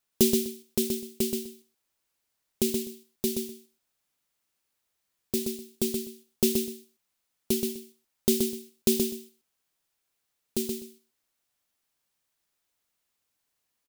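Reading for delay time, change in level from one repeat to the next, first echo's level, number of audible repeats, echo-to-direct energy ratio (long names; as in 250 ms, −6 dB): 126 ms, −15.0 dB, −5.0 dB, 2, −5.0 dB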